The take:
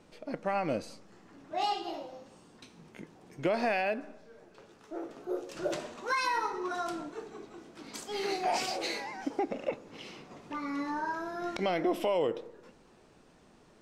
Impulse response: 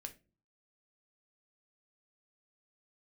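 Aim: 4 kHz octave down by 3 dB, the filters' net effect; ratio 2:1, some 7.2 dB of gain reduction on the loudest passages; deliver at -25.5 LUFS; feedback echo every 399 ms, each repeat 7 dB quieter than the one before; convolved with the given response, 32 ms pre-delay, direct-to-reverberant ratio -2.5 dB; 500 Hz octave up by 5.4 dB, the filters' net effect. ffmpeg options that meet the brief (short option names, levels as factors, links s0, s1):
-filter_complex "[0:a]equalizer=f=500:t=o:g=7,equalizer=f=4000:t=o:g=-4,acompressor=threshold=0.0224:ratio=2,aecho=1:1:399|798|1197|1596|1995:0.447|0.201|0.0905|0.0407|0.0183,asplit=2[s0][s1];[1:a]atrim=start_sample=2205,adelay=32[s2];[s1][s2]afir=irnorm=-1:irlink=0,volume=2.24[s3];[s0][s3]amix=inputs=2:normalize=0,volume=1.88"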